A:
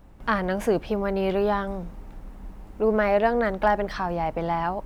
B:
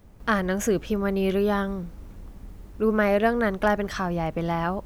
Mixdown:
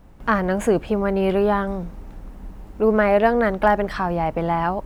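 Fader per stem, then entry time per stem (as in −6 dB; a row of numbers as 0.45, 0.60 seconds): +2.0, −6.5 decibels; 0.00, 0.00 seconds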